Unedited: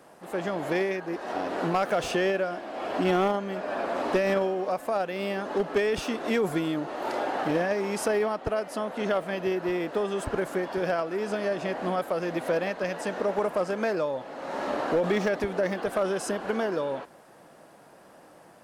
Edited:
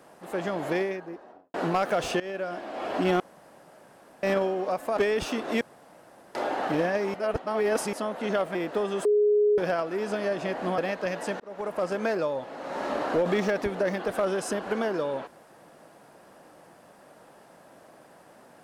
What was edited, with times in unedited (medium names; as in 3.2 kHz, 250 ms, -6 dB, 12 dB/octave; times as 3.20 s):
0.64–1.54 s: studio fade out
2.20–2.59 s: fade in, from -18 dB
3.20–4.23 s: room tone
4.97–5.73 s: delete
6.37–7.11 s: room tone
7.90–8.69 s: reverse
9.31–9.75 s: delete
10.25–10.78 s: bleep 417 Hz -18 dBFS
11.98–12.56 s: delete
13.18–13.67 s: fade in